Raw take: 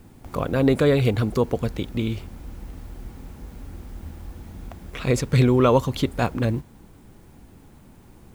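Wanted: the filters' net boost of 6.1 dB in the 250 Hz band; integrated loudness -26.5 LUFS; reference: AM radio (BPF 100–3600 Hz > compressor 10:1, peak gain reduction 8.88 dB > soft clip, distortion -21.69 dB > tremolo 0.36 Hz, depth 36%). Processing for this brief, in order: BPF 100–3600 Hz; bell 250 Hz +7 dB; compressor 10:1, threshold -17 dBFS; soft clip -11.5 dBFS; tremolo 0.36 Hz, depth 36%

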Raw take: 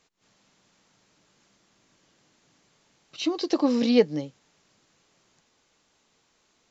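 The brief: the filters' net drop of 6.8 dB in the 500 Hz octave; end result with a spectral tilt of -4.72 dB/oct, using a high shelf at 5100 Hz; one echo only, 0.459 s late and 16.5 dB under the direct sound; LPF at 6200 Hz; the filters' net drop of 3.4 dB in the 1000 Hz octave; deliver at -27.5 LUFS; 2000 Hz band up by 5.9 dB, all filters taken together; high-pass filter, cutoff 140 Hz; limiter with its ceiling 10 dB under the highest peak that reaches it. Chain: HPF 140 Hz; LPF 6200 Hz; bell 500 Hz -7.5 dB; bell 1000 Hz -3.5 dB; bell 2000 Hz +9 dB; high shelf 5100 Hz -3.5 dB; limiter -19.5 dBFS; echo 0.459 s -16.5 dB; gain +3 dB

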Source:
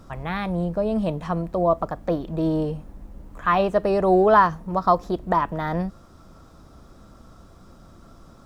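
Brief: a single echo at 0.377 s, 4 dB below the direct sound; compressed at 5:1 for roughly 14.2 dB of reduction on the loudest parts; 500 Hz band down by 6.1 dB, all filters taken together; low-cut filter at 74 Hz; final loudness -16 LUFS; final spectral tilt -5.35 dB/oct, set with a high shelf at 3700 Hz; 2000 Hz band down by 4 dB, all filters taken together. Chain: HPF 74 Hz; bell 500 Hz -8.5 dB; bell 2000 Hz -6 dB; high shelf 3700 Hz +6 dB; compressor 5:1, threshold -30 dBFS; echo 0.377 s -4 dB; gain +17 dB

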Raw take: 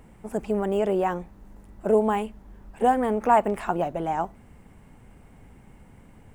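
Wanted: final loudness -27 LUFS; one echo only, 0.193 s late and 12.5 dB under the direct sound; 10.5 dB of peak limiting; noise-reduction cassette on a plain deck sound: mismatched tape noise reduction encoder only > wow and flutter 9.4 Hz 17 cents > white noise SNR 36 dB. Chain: limiter -18 dBFS; echo 0.193 s -12.5 dB; mismatched tape noise reduction encoder only; wow and flutter 9.4 Hz 17 cents; white noise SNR 36 dB; gain +2 dB

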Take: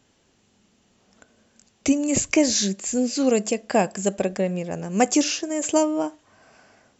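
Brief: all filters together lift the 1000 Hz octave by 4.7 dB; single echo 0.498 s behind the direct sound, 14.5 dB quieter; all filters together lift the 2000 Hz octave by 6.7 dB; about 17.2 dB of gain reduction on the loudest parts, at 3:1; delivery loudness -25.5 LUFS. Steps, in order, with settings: bell 1000 Hz +5.5 dB; bell 2000 Hz +7 dB; compressor 3:1, threshold -36 dBFS; echo 0.498 s -14.5 dB; gain +9.5 dB

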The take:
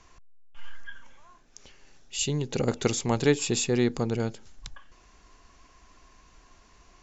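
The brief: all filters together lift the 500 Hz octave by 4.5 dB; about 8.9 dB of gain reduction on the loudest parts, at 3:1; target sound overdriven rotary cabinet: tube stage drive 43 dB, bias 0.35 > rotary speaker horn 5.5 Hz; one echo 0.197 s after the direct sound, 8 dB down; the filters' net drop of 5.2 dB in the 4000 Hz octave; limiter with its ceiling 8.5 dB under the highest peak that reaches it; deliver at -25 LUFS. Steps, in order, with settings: bell 500 Hz +5.5 dB; bell 4000 Hz -7 dB; compressor 3:1, threshold -25 dBFS; limiter -23 dBFS; echo 0.197 s -8 dB; tube stage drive 43 dB, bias 0.35; rotary speaker horn 5.5 Hz; gain +23 dB

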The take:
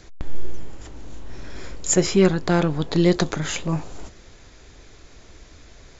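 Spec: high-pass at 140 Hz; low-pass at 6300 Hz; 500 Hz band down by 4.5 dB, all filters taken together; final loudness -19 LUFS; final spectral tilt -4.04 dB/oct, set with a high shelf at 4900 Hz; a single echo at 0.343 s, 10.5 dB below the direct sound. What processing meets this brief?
HPF 140 Hz; LPF 6300 Hz; bell 500 Hz -7 dB; high shelf 4900 Hz +8 dB; echo 0.343 s -10.5 dB; gain +4 dB

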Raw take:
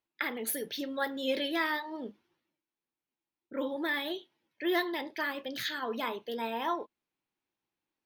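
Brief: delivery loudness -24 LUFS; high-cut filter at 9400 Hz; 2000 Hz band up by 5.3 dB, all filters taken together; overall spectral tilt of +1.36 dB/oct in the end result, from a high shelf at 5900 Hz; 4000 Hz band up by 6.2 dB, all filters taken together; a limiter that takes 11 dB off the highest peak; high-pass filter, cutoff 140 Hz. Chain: HPF 140 Hz; LPF 9400 Hz; bell 2000 Hz +5 dB; bell 4000 Hz +7.5 dB; high shelf 5900 Hz -5 dB; gain +9 dB; limiter -12.5 dBFS

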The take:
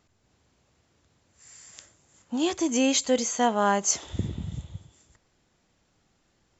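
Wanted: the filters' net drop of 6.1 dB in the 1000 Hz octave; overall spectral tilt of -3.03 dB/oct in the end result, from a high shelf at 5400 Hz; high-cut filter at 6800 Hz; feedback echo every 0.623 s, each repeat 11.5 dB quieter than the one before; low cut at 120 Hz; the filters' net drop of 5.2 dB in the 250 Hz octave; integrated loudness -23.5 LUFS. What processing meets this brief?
HPF 120 Hz; LPF 6800 Hz; bell 250 Hz -5.5 dB; bell 1000 Hz -8 dB; high shelf 5400 Hz -3.5 dB; feedback echo 0.623 s, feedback 27%, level -11.5 dB; gain +6.5 dB

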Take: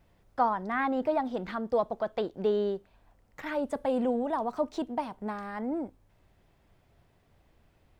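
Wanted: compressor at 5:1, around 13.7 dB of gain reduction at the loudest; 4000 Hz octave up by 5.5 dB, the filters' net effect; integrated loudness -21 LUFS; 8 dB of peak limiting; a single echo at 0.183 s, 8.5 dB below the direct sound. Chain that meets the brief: bell 4000 Hz +7 dB; compressor 5:1, threshold -38 dBFS; limiter -34 dBFS; echo 0.183 s -8.5 dB; gain +22 dB

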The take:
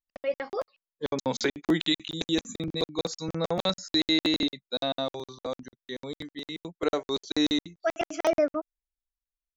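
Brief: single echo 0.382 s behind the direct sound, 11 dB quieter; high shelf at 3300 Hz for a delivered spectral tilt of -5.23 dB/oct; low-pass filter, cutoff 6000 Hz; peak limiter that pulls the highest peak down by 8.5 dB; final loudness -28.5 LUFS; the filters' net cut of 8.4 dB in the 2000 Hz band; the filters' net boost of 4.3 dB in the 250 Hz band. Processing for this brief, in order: LPF 6000 Hz; bell 250 Hz +6 dB; bell 2000 Hz -9 dB; high shelf 3300 Hz -4 dB; limiter -19.5 dBFS; echo 0.382 s -11 dB; gain +3 dB

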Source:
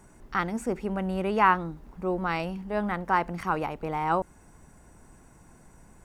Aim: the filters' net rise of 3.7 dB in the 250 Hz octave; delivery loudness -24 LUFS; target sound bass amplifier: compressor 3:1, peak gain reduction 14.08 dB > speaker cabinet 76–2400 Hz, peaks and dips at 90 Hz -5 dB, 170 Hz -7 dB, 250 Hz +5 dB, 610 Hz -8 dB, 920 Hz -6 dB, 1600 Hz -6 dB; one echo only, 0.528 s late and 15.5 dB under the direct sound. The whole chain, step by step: bell 250 Hz +6.5 dB; echo 0.528 s -15.5 dB; compressor 3:1, threshold -34 dBFS; speaker cabinet 76–2400 Hz, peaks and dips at 90 Hz -5 dB, 170 Hz -7 dB, 250 Hz +5 dB, 610 Hz -8 dB, 920 Hz -6 dB, 1600 Hz -6 dB; gain +14.5 dB

